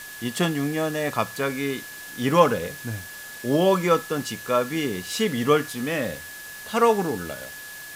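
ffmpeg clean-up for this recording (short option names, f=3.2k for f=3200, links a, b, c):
-af "bandreject=f=1.7k:w=30,afwtdn=0.0089"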